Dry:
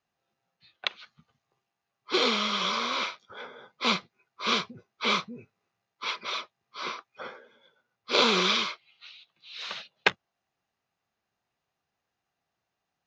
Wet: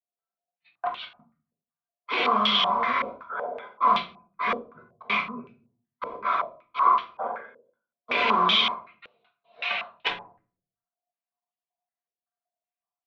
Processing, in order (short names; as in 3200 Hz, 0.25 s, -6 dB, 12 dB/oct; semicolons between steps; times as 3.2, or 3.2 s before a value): bin magnitudes rounded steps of 15 dB; gate -57 dBFS, range -28 dB; small resonant body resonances 710/1000 Hz, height 15 dB, ringing for 60 ms; tube stage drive 16 dB, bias 0.6; 4.54–5.1 flipped gate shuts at -32 dBFS, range -33 dB; limiter -24 dBFS, peak gain reduction 11.5 dB; HPF 300 Hz 6 dB/oct; reverb RT60 0.45 s, pre-delay 4 ms, DRR 1.5 dB; stepped low-pass 5.3 Hz 500–3200 Hz; gain +5 dB